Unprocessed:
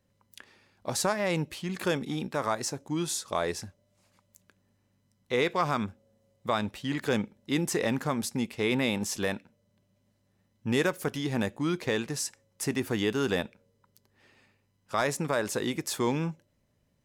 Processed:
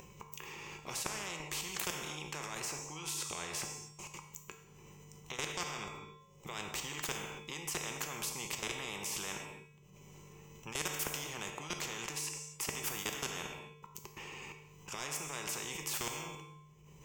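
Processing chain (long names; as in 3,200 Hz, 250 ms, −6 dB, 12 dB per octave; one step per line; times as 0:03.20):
EQ curve with evenly spaced ripples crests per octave 0.73, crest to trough 15 dB
output level in coarse steps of 22 dB
brickwall limiter −19.5 dBFS, peak gain reduction 7 dB
upward compression, threshold −54 dBFS
tuned comb filter 150 Hz, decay 0.69 s, harmonics odd, mix 80%
reverb whose tail is shaped and stops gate 300 ms falling, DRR 8 dB
every bin compressed towards the loudest bin 4 to 1
level +12 dB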